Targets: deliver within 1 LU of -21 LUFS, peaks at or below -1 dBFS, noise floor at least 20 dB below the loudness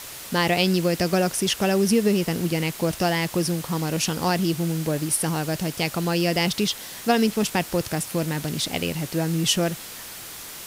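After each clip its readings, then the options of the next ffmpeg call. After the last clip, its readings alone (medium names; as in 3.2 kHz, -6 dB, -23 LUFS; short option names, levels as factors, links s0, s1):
noise floor -38 dBFS; noise floor target -44 dBFS; loudness -23.5 LUFS; peak level -7.5 dBFS; loudness target -21.0 LUFS
-> -af "afftdn=nr=6:nf=-38"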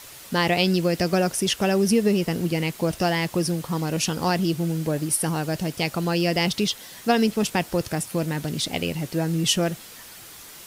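noise floor -43 dBFS; noise floor target -44 dBFS
-> -af "afftdn=nr=6:nf=-43"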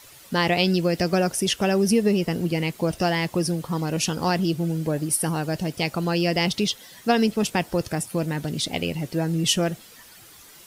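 noise floor -48 dBFS; loudness -24.0 LUFS; peak level -8.0 dBFS; loudness target -21.0 LUFS
-> -af "volume=1.41"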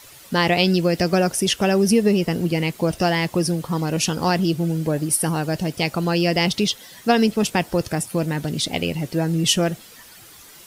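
loudness -21.0 LUFS; peak level -5.0 dBFS; noise floor -45 dBFS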